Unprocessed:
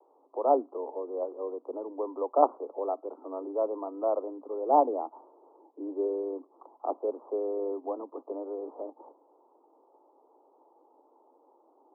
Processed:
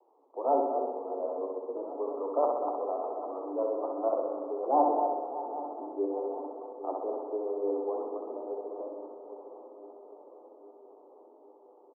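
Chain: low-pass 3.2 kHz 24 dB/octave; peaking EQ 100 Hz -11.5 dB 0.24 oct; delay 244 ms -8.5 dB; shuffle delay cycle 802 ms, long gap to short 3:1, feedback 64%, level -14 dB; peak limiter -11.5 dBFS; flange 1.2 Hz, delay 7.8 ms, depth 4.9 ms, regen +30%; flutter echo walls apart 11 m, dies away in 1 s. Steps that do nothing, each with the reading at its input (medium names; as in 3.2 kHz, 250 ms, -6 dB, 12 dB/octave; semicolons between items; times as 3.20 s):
low-pass 3.2 kHz: input has nothing above 1.3 kHz; peaking EQ 100 Hz: input has nothing below 210 Hz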